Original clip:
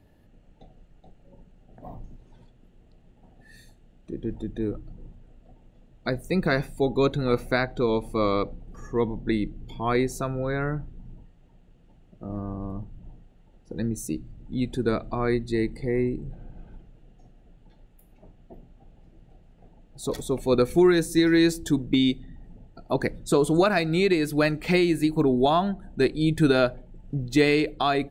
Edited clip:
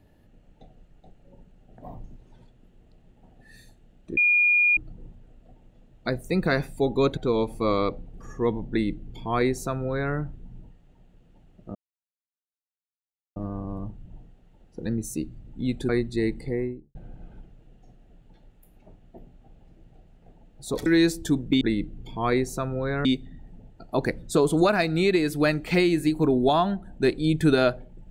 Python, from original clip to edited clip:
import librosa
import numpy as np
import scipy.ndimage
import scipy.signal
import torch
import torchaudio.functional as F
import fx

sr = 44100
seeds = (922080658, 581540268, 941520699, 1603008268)

y = fx.studio_fade_out(x, sr, start_s=15.76, length_s=0.55)
y = fx.edit(y, sr, fx.bleep(start_s=4.17, length_s=0.6, hz=2430.0, db=-16.5),
    fx.cut(start_s=7.17, length_s=0.54),
    fx.duplicate(start_s=9.24, length_s=1.44, to_s=22.02),
    fx.insert_silence(at_s=12.29, length_s=1.61),
    fx.cut(start_s=14.82, length_s=0.43),
    fx.cut(start_s=20.22, length_s=1.05), tone=tone)